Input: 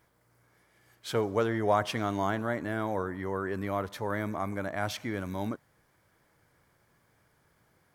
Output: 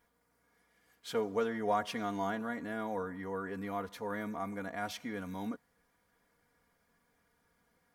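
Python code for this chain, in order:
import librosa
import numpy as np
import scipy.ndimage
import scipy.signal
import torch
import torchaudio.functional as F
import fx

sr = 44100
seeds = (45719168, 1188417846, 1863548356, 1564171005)

y = x + 0.76 * np.pad(x, (int(4.2 * sr / 1000.0), 0))[:len(x)]
y = y * librosa.db_to_amplitude(-7.5)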